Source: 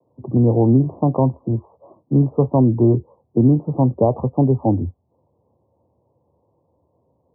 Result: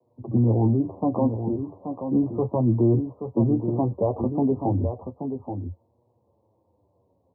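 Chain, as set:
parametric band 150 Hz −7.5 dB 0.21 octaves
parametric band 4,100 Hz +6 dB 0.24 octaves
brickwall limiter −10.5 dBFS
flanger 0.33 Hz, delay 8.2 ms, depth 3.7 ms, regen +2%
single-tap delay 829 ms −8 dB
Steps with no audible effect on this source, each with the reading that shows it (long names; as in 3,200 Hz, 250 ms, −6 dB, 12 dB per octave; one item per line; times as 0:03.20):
parametric band 4,100 Hz: nothing at its input above 1,000 Hz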